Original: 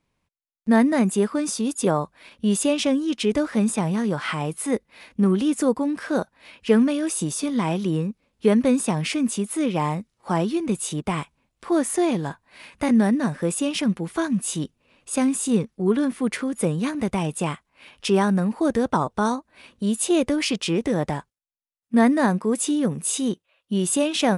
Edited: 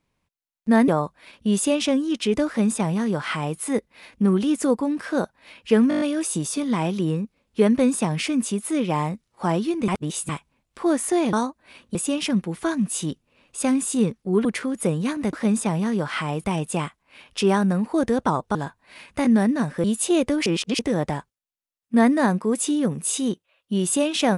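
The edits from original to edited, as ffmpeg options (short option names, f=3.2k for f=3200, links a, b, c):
-filter_complex "[0:a]asplit=19[a][b][c][d][e][f][g][h][i][j][k][l][m][n][o][p][q][r][s];[a]atrim=end=0.882[t];[b]atrim=start=1.858:end=6.892[u];[c]atrim=start=6.868:end=6.892[v];[d]atrim=start=6.868:end=6.892[w];[e]atrim=start=6.868:end=6.892[x];[f]atrim=start=6.868:end=6.892[y];[g]atrim=start=6.868:end=6.892[z];[h]atrim=start=6.868:end=10.742[aa];[i]atrim=start=10.738:end=11.152,asetpts=PTS-STARTPTS,areverse[ab];[j]atrim=start=11.148:end=12.192[ac];[k]atrim=start=19.218:end=19.842[ad];[l]atrim=start=13.478:end=15.982[ae];[m]atrim=start=16.228:end=17.112[af];[n]atrim=start=3.448:end=4.562[ag];[o]atrim=start=17.108:end=19.222[ah];[p]atrim=start=12.188:end=13.482[ai];[q]atrim=start=19.838:end=20.462[aj];[r]atrim=start=20.458:end=20.792,asetpts=PTS-STARTPTS,areverse[ak];[s]atrim=start=20.788[al];[t][u]acrossfade=d=0.004:c1=hsin:c2=hsin[am];[am][v]acrossfade=d=0.004:c1=hsin:c2=hsin[an];[an][w]acrossfade=d=0.004:c1=hsin:c2=hsin[ao];[ao][x]acrossfade=d=0.004:c1=hsin:c2=hsin[ap];[ap][y]acrossfade=d=0.004:c1=hsin:c2=hsin[aq];[aq][z]acrossfade=d=0.004:c1=hsin:c2=hsin[ar];[ar][aa]acrossfade=d=0.004:c1=hsin:c2=hsin[as];[as][ab]acrossfade=d=0.004:c1=hsin:c2=hsin[at];[at][ac]acrossfade=d=0.004:c1=hsin:c2=hsin[au];[au][ad]acrossfade=d=0.004:c1=hsin:c2=hsin[av];[av][ae]acrossfade=d=0.004:c1=hsin:c2=hsin[aw];[aw][af]acrossfade=d=0.004:c1=hsin:c2=hsin[ax];[ax][ag]acrossfade=d=0.004:c1=hsin:c2=hsin[ay];[ay][ah]acrossfade=d=0.004:c1=hsin:c2=hsin[az];[az][ai]acrossfade=d=0.004:c1=hsin:c2=hsin[ba];[ba][aj]acrossfade=d=0.004:c1=hsin:c2=hsin[bb];[bb][ak]acrossfade=d=0.004:c1=hsin:c2=hsin[bc];[bc][al]acrossfade=d=0.004:c1=hsin:c2=hsin"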